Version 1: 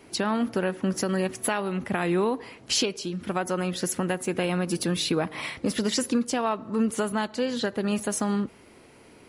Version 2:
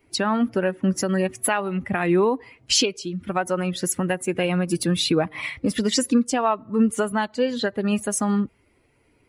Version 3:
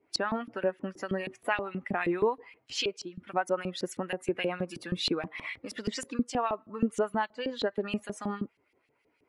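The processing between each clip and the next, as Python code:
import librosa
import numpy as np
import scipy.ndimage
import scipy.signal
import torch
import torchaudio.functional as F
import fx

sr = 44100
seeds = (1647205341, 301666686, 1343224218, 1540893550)

y1 = fx.bin_expand(x, sr, power=1.5)
y1 = y1 * 10.0 ** (7.0 / 20.0)
y2 = fx.filter_lfo_bandpass(y1, sr, shape='saw_up', hz=6.3, low_hz=300.0, high_hz=4600.0, q=1.0)
y2 = y2 * 10.0 ** (-3.0 / 20.0)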